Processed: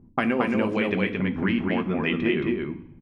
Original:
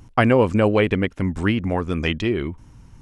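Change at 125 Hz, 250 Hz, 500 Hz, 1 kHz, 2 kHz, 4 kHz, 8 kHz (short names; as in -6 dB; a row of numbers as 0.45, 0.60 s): -8.5 dB, -2.0 dB, -6.5 dB, -5.5 dB, -2.0 dB, -4.5 dB, n/a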